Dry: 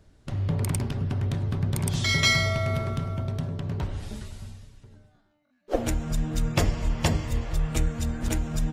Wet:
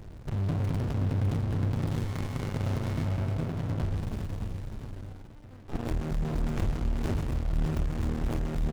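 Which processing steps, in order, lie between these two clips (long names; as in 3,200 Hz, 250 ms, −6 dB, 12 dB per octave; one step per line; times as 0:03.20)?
power curve on the samples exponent 0.5
single-tap delay 603 ms −8.5 dB
windowed peak hold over 65 samples
level −9 dB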